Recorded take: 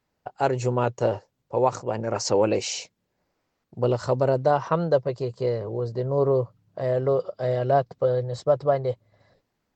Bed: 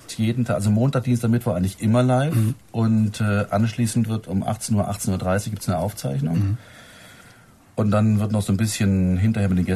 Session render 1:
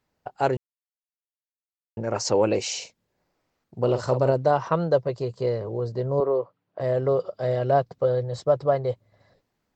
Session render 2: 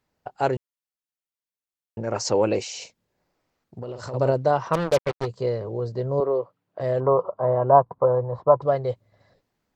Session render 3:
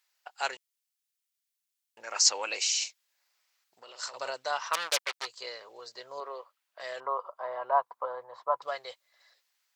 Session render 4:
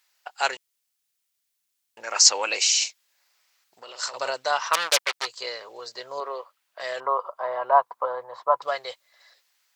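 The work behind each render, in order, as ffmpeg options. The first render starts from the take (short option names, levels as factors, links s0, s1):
-filter_complex "[0:a]asettb=1/sr,asplit=3[s0][s1][s2];[s0]atrim=end=2.774[s3];[s1]atrim=start=2.77:end=4.32,asetpts=PTS-STARTPTS,afade=t=in:d=0.004:c=qsin,afade=t=out:st=1.546:d=0.004:c=qsin,asplit=2[s4][s5];[s5]adelay=46,volume=0.355[s6];[s4][s6]amix=inputs=2:normalize=0,atrim=end_sample=68355[s7];[s2]atrim=start=4.316[s8];[s3][s7]acrossfade=d=0.004:c1=hsin:c2=qsin[s9];[s9][s8]acrossfade=d=0.004:c1=qsin:c2=hsin,asettb=1/sr,asplit=3[s10][s11][s12];[s10]atrim=end=6.204[s13];[s11]atrim=start=6.2:end=6.8,asetpts=PTS-STARTPTS,afade=t=in:d=0.004:c=qsin,afade=t=out:st=0.596:d=0.004:c=qsin,highpass=350,lowpass=3000[s14];[s12]atrim=start=6.796[s15];[s13][s14]acrossfade=d=0.004:c1=hsin:c2=qsin[s16];[s16][s15]acrossfade=d=0.004:c1=qsin:c2=hsin,asplit=3[s17][s18][s19];[s17]atrim=end=0.57,asetpts=PTS-STARTPTS,afade=t=out:st=0.566:d=0.004:c=hsin[s20];[s18]atrim=start=0.57:end=1.97,asetpts=PTS-STARTPTS,volume=0[s21];[s19]atrim=start=1.97,asetpts=PTS-STARTPTS,afade=t=in:d=0.004:c=hsin[s22];[s20][s21][s22]concat=n=3:v=0:a=1"
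-filter_complex "[0:a]asplit=3[s0][s1][s2];[s0]afade=t=out:st=2.62:d=0.02[s3];[s1]acompressor=threshold=0.0282:ratio=6:attack=3.2:release=140:knee=1:detection=peak,afade=t=in:st=2.62:d=0.02,afade=t=out:st=4.13:d=0.02[s4];[s2]afade=t=in:st=4.13:d=0.02[s5];[s3][s4][s5]amix=inputs=3:normalize=0,asplit=3[s6][s7][s8];[s6]afade=t=out:st=4.73:d=0.02[s9];[s7]acrusher=bits=3:mix=0:aa=0.5,afade=t=in:st=4.73:d=0.02,afade=t=out:st=5.25:d=0.02[s10];[s8]afade=t=in:st=5.25:d=0.02[s11];[s9][s10][s11]amix=inputs=3:normalize=0,asettb=1/sr,asplit=3[s12][s13][s14];[s12]atrim=end=7.004[s15];[s13]atrim=start=7:end=8.62,asetpts=PTS-STARTPTS,afade=t=in:d=0.004:c=qsin,afade=t=out:st=1.616:d=0.004:c=qsin,lowpass=f=1000:t=q:w=7.7[s16];[s14]atrim=start=8.616[s17];[s15][s16]acrossfade=d=0.004:c1=hsin:c2=qsin[s18];[s18][s17]acrossfade=d=0.004:c1=qsin:c2=hsin"
-af "highpass=1000,tiltshelf=f=1400:g=-9"
-af "volume=2.37,alimiter=limit=0.794:level=0:latency=1"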